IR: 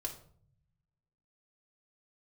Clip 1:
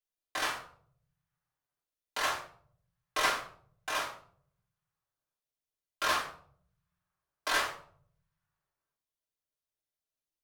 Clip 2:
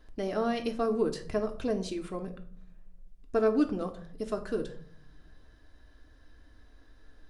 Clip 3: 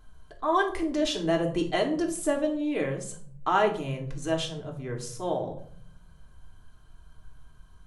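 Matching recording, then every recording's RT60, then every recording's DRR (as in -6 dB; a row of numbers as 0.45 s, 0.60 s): 3; 0.55 s, 0.55 s, 0.55 s; -8.5 dB, 5.0 dB, 0.5 dB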